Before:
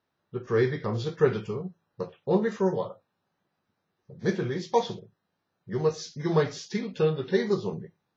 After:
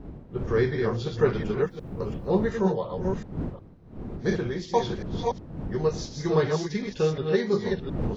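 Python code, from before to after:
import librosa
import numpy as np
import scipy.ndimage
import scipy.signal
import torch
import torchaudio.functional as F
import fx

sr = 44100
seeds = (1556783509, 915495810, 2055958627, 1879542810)

y = fx.reverse_delay(x, sr, ms=359, wet_db=-4.0)
y = fx.dmg_wind(y, sr, seeds[0], corner_hz=220.0, level_db=-36.0)
y = fx.quant_dither(y, sr, seeds[1], bits=12, dither='none', at=(1.58, 2.49))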